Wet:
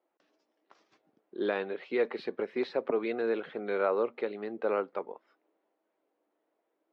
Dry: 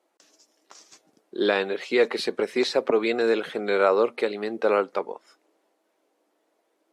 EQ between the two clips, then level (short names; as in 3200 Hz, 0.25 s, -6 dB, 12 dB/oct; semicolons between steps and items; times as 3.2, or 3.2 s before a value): air absorption 350 m; -7.0 dB